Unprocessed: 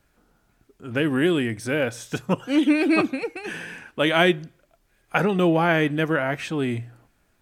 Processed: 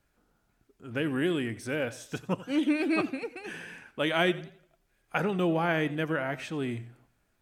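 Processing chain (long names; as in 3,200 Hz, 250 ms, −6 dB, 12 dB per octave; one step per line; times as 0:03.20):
feedback echo with a swinging delay time 89 ms, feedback 36%, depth 113 cents, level −18 dB
level −7.5 dB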